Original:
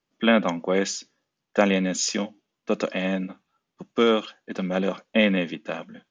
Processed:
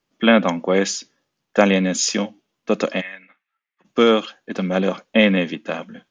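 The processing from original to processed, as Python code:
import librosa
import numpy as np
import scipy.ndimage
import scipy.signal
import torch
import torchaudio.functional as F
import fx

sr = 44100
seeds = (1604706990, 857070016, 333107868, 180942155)

y = fx.bandpass_q(x, sr, hz=2000.0, q=4.3, at=(3.0, 3.84), fade=0.02)
y = F.gain(torch.from_numpy(y), 5.0).numpy()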